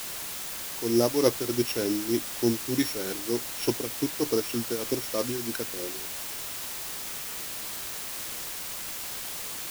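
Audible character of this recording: a buzz of ramps at a fixed pitch in blocks of 8 samples; tremolo triangle 3.3 Hz, depth 80%; a quantiser's noise floor 6-bit, dither triangular

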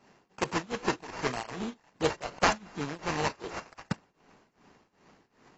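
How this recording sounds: a buzz of ramps at a fixed pitch in blocks of 16 samples; tremolo triangle 2.6 Hz, depth 95%; aliases and images of a low sample rate 3600 Hz, jitter 20%; AAC

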